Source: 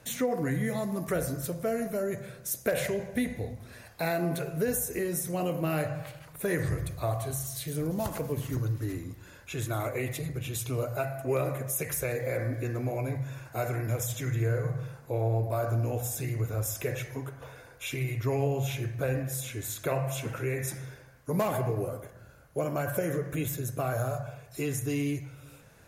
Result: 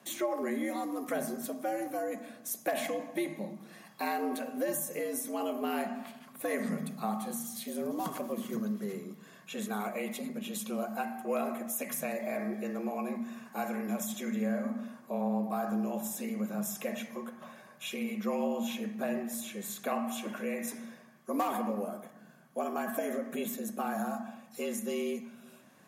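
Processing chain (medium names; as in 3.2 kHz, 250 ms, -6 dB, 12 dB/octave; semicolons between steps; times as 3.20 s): frequency shift +98 Hz; small resonant body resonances 1.1/3.3 kHz, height 11 dB; trim -4 dB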